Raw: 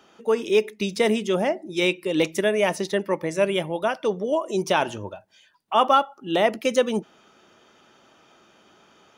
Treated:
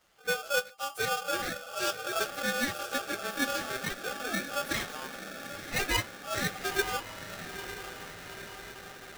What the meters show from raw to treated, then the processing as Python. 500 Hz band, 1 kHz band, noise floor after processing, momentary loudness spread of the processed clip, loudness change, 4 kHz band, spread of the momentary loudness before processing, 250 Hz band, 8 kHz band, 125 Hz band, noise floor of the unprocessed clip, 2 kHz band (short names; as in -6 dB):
-14.5 dB, -10.0 dB, -49 dBFS, 12 LU, -9.5 dB, -3.5 dB, 6 LU, -13.0 dB, +1.5 dB, -8.0 dB, -57 dBFS, -1.5 dB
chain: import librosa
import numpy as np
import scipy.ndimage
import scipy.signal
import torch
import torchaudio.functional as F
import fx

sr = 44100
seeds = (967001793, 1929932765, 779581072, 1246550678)

y = fx.partial_stretch(x, sr, pct=122)
y = fx.echo_diffused(y, sr, ms=946, feedback_pct=67, wet_db=-10)
y = y * np.sign(np.sin(2.0 * np.pi * 990.0 * np.arange(len(y)) / sr))
y = y * 10.0 ** (-7.5 / 20.0)